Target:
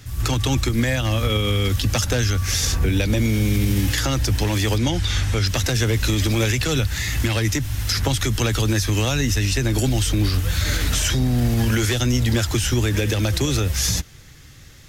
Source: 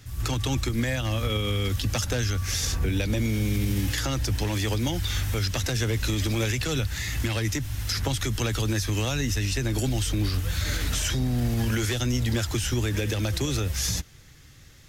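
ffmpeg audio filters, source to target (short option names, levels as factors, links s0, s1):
-filter_complex "[0:a]asettb=1/sr,asplit=3[s0][s1][s2];[s0]atrim=end=4.784[s3];[s1]atrim=start=4.78:end=5.46,asetpts=PTS-STARTPTS,afade=t=in:d=0.004:c=qsin,afade=t=out:st=0.676:d=0.004:c=qsin,lowpass=8200[s4];[s2]atrim=start=5.456[s5];[s3][s4]acrossfade=d=0.004:c1=hsin:c2=qsin[s6];[s6][s5]acrossfade=d=0.004:c1=qsin:c2=hsin,volume=2"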